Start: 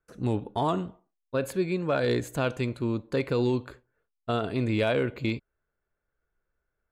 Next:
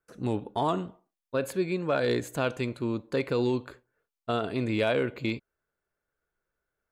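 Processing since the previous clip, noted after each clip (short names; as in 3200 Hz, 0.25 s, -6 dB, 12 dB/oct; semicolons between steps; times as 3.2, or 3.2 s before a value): low shelf 100 Hz -10 dB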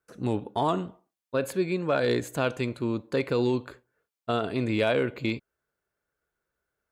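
HPF 41 Hz; gain +1.5 dB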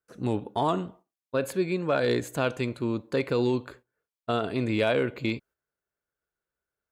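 gate -52 dBFS, range -7 dB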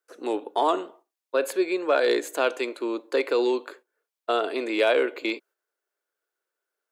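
steep high-pass 320 Hz 36 dB/oct; gain +4 dB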